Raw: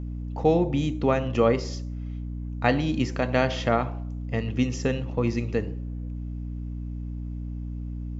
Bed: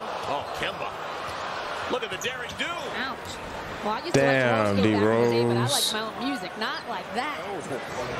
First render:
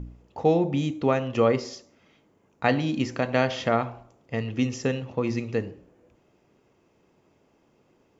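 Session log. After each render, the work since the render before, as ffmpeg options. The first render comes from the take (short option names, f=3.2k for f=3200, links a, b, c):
-af "bandreject=f=60:t=h:w=4,bandreject=f=120:t=h:w=4,bandreject=f=180:t=h:w=4,bandreject=f=240:t=h:w=4,bandreject=f=300:t=h:w=4"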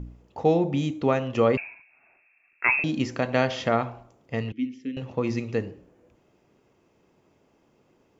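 -filter_complex "[0:a]asettb=1/sr,asplit=3[a][b][c];[a]atrim=end=1.574[d];[b]atrim=start=1.57:end=2.84,asetpts=PTS-STARTPTS,afade=t=in:d=0.004:c=qsin,afade=t=out:st=1.266:d=0.004:c=qsin,lowpass=f=2.4k:t=q:w=0.5098,lowpass=f=2.4k:t=q:w=0.6013,lowpass=f=2.4k:t=q:w=0.9,lowpass=f=2.4k:t=q:w=2.563,afreqshift=-2800[e];[c]atrim=start=2.836[f];[d][e]acrossfade=d=0.004:c1=hsin:c2=qsin[g];[g][f]acrossfade=d=0.004:c1=qsin:c2=hsin,asettb=1/sr,asplit=3[h][i][j];[h]atrim=end=4.524[k];[i]atrim=start=4.52:end=4.97,asetpts=PTS-STARTPTS,afade=t=in:d=0.004:c=qsin,afade=t=out:st=0.446:d=0.004:c=qsin,asplit=3[l][m][n];[l]bandpass=f=270:t=q:w=8,volume=0dB[o];[m]bandpass=f=2.29k:t=q:w=8,volume=-6dB[p];[n]bandpass=f=3.01k:t=q:w=8,volume=-9dB[q];[o][p][q]amix=inputs=3:normalize=0[r];[j]atrim=start=4.966[s];[k][r]acrossfade=d=0.004:c1=hsin:c2=qsin[t];[t][s]acrossfade=d=0.004:c1=qsin:c2=hsin"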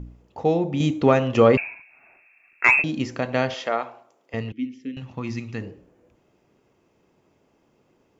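-filter_complex "[0:a]asettb=1/sr,asplit=3[a][b][c];[a]atrim=end=0.804[d];[b]atrim=start=0.8:end=2.82,asetpts=PTS-STARTPTS,afade=t=in:d=0.004:c=qsin,afade=t=out:st=2.016:d=0.004:c=qsin,acontrast=60[e];[c]atrim=start=2.816[f];[d][e]acrossfade=d=0.004:c1=hsin:c2=qsin[g];[g][f]acrossfade=d=0.004:c1=qsin:c2=hsin,asettb=1/sr,asplit=3[h][i][j];[h]atrim=end=3.544[k];[i]atrim=start=3.54:end=4.34,asetpts=PTS-STARTPTS,afade=t=in:d=0.004:c=qsin,afade=t=out:st=0.796:d=0.004:c=qsin,highpass=420[l];[j]atrim=start=4.336[m];[k][l]acrossfade=d=0.004:c1=hsin:c2=qsin[n];[n][m]acrossfade=d=0.004:c1=qsin:c2=hsin,asettb=1/sr,asplit=3[o][p][q];[o]atrim=end=4.944[r];[p]atrim=start=4.94:end=5.61,asetpts=PTS-STARTPTS,afade=t=in:d=0.004:c=qsin,afade=t=out:st=0.666:d=0.004:c=qsin,equalizer=f=490:w=1.5:g=-12[s];[q]atrim=start=5.606[t];[r][s]acrossfade=d=0.004:c1=hsin:c2=qsin[u];[u][t]acrossfade=d=0.004:c1=qsin:c2=hsin"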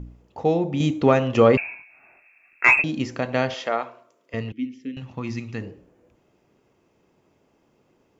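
-filter_complex "[0:a]asettb=1/sr,asplit=3[a][b][c];[a]atrim=end=1.634[d];[b]atrim=start=1.63:end=2.81,asetpts=PTS-STARTPTS,afade=t=in:d=0.004:c=qsin,afade=t=out:st=1.176:d=0.004:c=qsin,asplit=2[e][f];[f]adelay=22,volume=-7dB[g];[e][g]amix=inputs=2:normalize=0,atrim=end_sample=52038[h];[c]atrim=start=2.806[i];[d][h]acrossfade=d=0.004:c1=hsin:c2=qsin[j];[j][i]acrossfade=d=0.004:c1=qsin:c2=hsin,asettb=1/sr,asplit=3[k][l][m];[k]atrim=end=3.854[n];[l]atrim=start=3.85:end=4.41,asetpts=PTS-STARTPTS,afade=t=in:d=0.004:c=qsin,afade=t=out:st=0.556:d=0.004:c=qsin,asuperstop=centerf=800:order=4:qfactor=4.4[o];[m]atrim=start=4.406[p];[n][o]acrossfade=d=0.004:c1=hsin:c2=qsin[q];[q][p]acrossfade=d=0.004:c1=qsin:c2=hsin"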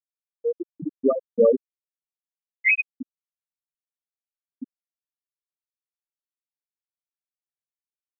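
-af "afftfilt=real='re*gte(hypot(re,im),1)':imag='im*gte(hypot(re,im),1)':win_size=1024:overlap=0.75"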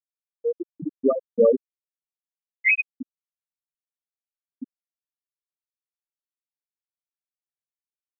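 -af anull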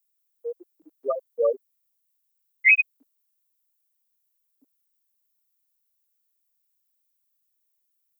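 -af "highpass=f=500:w=0.5412,highpass=f=500:w=1.3066,aemphasis=mode=production:type=riaa"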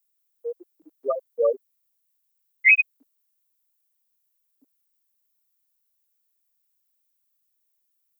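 -af "volume=1dB"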